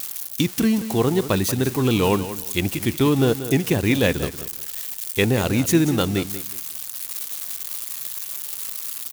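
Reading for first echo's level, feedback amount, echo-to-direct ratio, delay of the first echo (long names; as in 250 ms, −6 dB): −12.5 dB, 23%, −12.5 dB, 184 ms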